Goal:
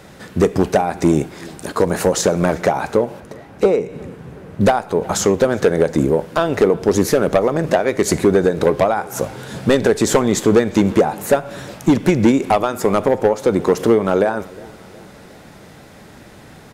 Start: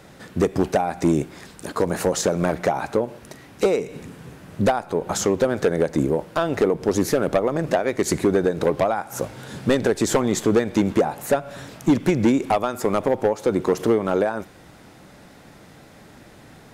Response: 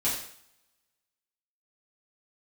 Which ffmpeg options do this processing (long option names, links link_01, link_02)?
-filter_complex "[0:a]asettb=1/sr,asplit=3[link_01][link_02][link_03];[link_01]atrim=end=3.204[link_04];[link_02]atrim=start=3.2:end=4.61,asetpts=PTS-STARTPTS,afade=type=in:duration=0.004:curve=qsin,afade=type=out:start_time=1.406:duration=0.004:curve=qsin,highshelf=frequency=2400:gain=-11[link_05];[link_03]atrim=start=4.606[link_06];[link_04][link_05]acrossfade=duration=0.004:curve1=hsin:curve2=qsin[link_07];[link_07][link_06]acrossfade=duration=0.004:curve1=qsin:curve2=hsin,asplit=2[link_08][link_09];[link_09]adelay=362,lowpass=frequency=4300:poles=1,volume=-23dB,asplit=2[link_10][link_11];[link_11]adelay=362,lowpass=frequency=4300:poles=1,volume=0.54,asplit=2[link_12][link_13];[link_13]adelay=362,lowpass=frequency=4300:poles=1,volume=0.54,asplit=2[link_14][link_15];[link_15]adelay=362,lowpass=frequency=4300:poles=1,volume=0.54[link_16];[link_08][link_10][link_12][link_14][link_16]amix=inputs=5:normalize=0,asplit=2[link_17][link_18];[1:a]atrim=start_sample=2205,asetrate=74970,aresample=44100[link_19];[link_18][link_19]afir=irnorm=-1:irlink=0,volume=-20dB[link_20];[link_17][link_20]amix=inputs=2:normalize=0,volume=4.5dB"